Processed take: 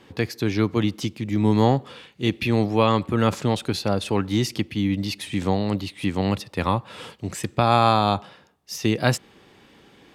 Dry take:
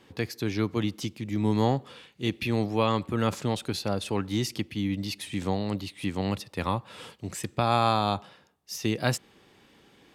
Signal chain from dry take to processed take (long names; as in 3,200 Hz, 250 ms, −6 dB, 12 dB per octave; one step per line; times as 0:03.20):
high-shelf EQ 5,300 Hz −4.5 dB
level +6 dB